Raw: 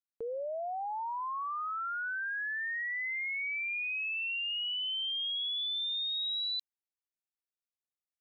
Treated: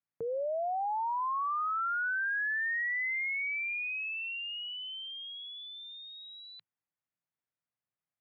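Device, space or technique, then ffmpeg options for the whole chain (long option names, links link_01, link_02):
bass cabinet: -af "highpass=81,equalizer=frequency=110:width_type=q:width=4:gain=9,equalizer=frequency=160:width_type=q:width=4:gain=9,equalizer=frequency=400:width_type=q:width=4:gain=-5,lowpass=frequency=2300:width=0.5412,lowpass=frequency=2300:width=1.3066,volume=4dB"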